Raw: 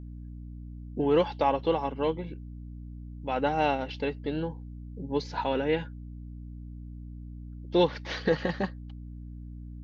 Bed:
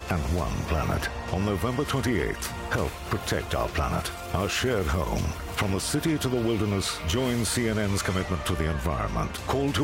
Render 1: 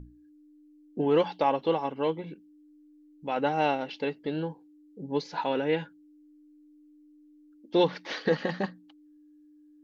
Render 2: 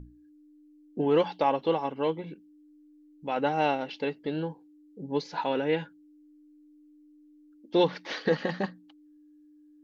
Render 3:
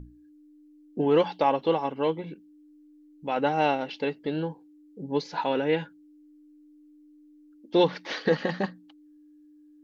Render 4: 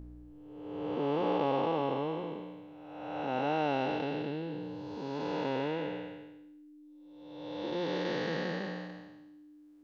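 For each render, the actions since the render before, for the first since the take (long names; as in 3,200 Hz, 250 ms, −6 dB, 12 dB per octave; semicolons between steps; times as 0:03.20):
mains-hum notches 60/120/180/240 Hz
no processing that can be heard
level +2 dB
spectrum smeared in time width 650 ms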